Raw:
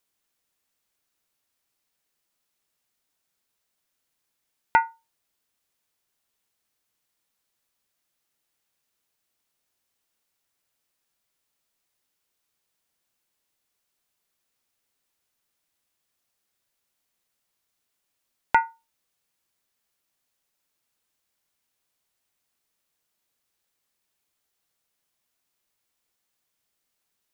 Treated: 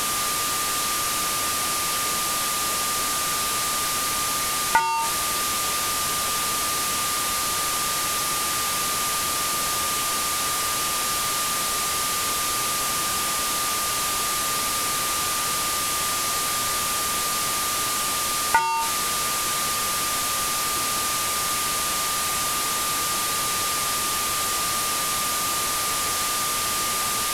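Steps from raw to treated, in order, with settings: one-bit delta coder 64 kbps, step -18 dBFS; whistle 1.2 kHz -28 dBFS

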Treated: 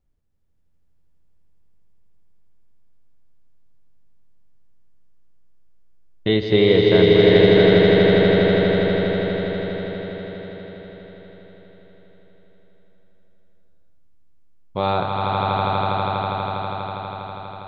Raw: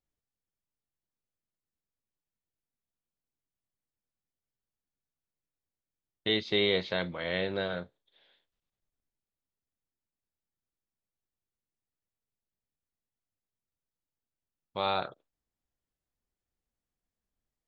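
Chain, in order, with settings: tilt EQ -3 dB/octave; on a send: echo with a slow build-up 81 ms, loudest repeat 8, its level -4.5 dB; on the sum: trim +7.5 dB

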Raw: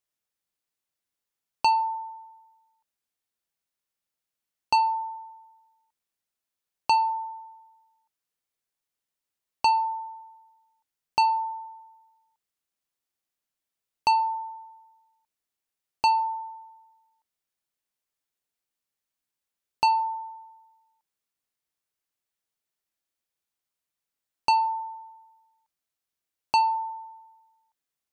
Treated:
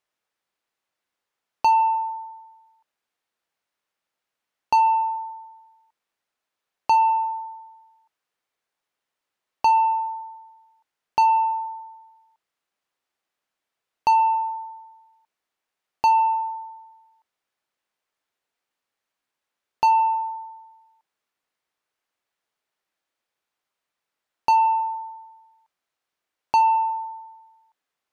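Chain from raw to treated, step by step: overdrive pedal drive 15 dB, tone 1.4 kHz, clips at -14 dBFS; trim +3.5 dB

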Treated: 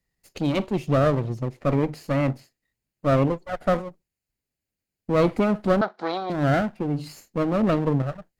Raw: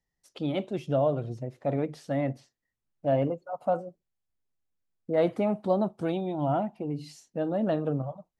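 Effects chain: comb filter that takes the minimum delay 0.43 ms; valve stage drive 18 dB, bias 0.25; 5.81–6.30 s: cabinet simulation 490–5300 Hz, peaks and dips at 730 Hz +7 dB, 1.4 kHz +7 dB, 2.7 kHz -7 dB, 4 kHz +7 dB; trim +7.5 dB

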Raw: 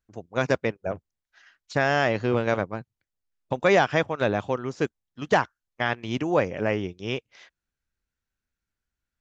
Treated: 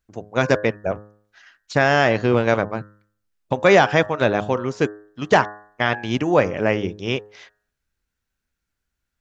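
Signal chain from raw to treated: de-hum 104.2 Hz, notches 18; trim +6 dB

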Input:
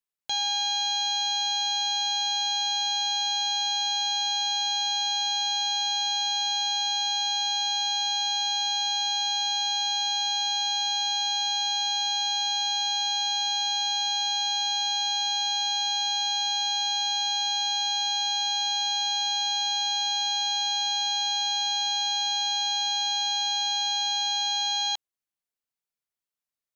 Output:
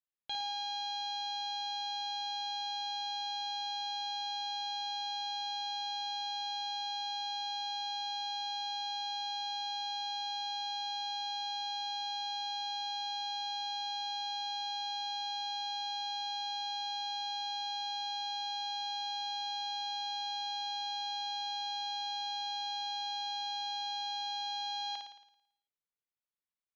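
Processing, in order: low-pass 4.2 kHz 24 dB/octave; flutter echo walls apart 9.5 m, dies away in 0.74 s; trim -8.5 dB

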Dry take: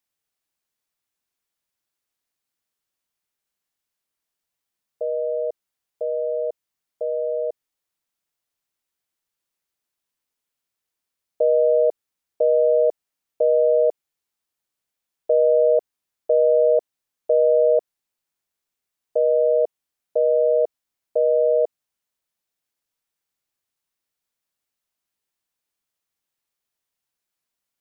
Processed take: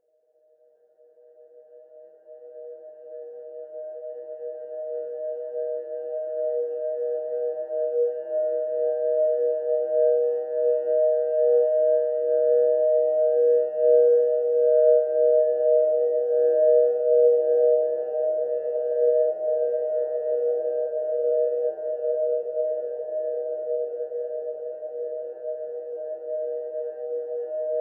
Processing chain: bass shelf 320 Hz +4.5 dB; gate -16 dBFS, range -15 dB; Paulstretch 21×, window 1.00 s, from 18.72 s

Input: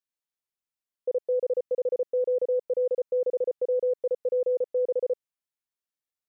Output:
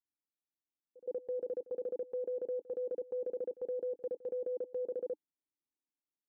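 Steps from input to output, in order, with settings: cascade formant filter u; transient shaper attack +1 dB, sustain +5 dB; pre-echo 119 ms -20 dB; trim +4.5 dB

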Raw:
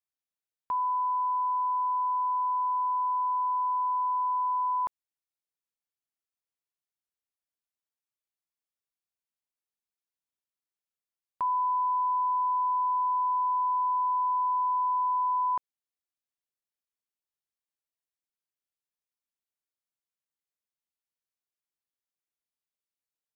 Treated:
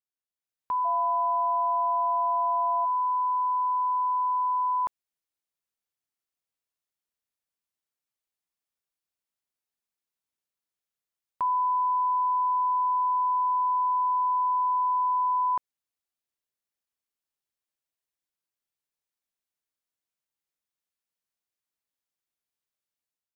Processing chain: 0.84–2.84 s: whistle 690 Hz -33 dBFS; level rider gain up to 9 dB; trim -7 dB

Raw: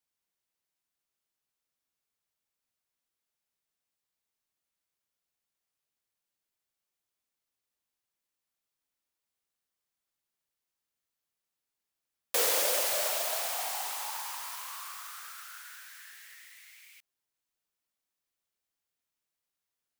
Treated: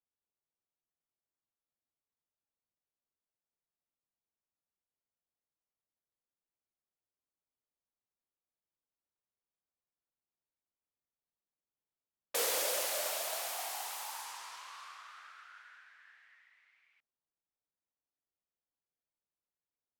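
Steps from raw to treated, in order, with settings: level-controlled noise filter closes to 990 Hz, open at -33 dBFS; trim -4.5 dB

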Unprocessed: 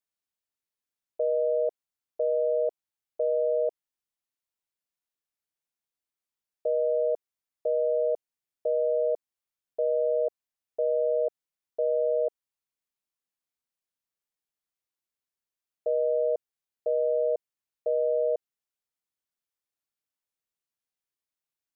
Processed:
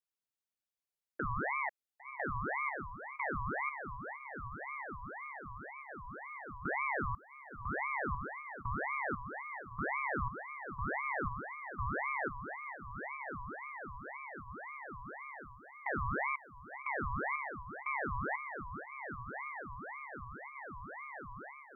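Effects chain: echo that smears into a reverb 1087 ms, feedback 51%, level -5.5 dB; dynamic bell 470 Hz, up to -5 dB, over -38 dBFS, Q 1.1; ring modulator with a swept carrier 1.1 kHz, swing 55%, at 1.9 Hz; trim -3 dB

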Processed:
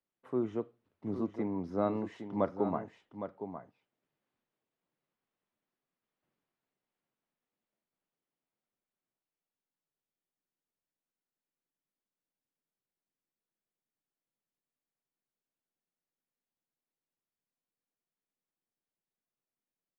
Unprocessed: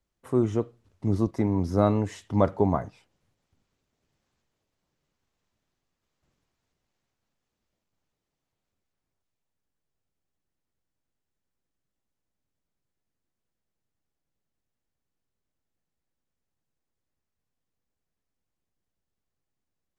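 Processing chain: three-band isolator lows -20 dB, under 150 Hz, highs -19 dB, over 3.8 kHz; delay 811 ms -9.5 dB; trim -8 dB

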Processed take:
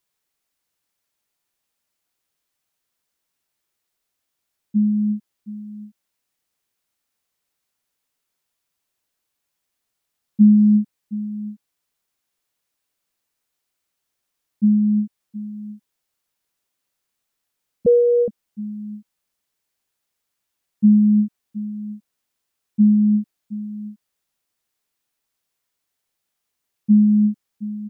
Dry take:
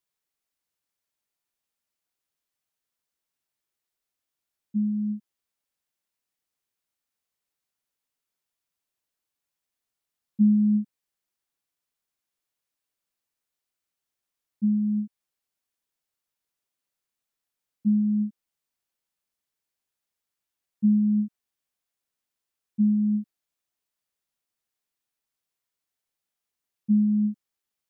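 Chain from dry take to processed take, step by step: delay 720 ms -15.5 dB; 17.86–18.28 s: frequency shift +270 Hz; trim +7.5 dB

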